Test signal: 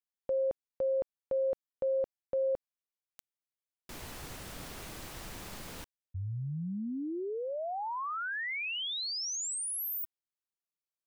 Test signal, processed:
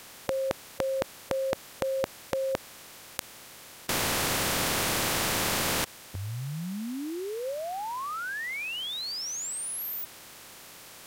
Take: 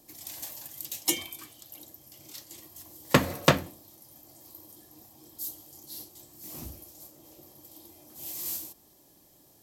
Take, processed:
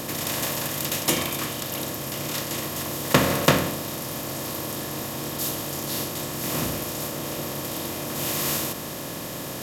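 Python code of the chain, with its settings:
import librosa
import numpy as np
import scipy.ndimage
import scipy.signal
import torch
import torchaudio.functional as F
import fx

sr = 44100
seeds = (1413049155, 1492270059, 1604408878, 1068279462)

y = fx.bin_compress(x, sr, power=0.4)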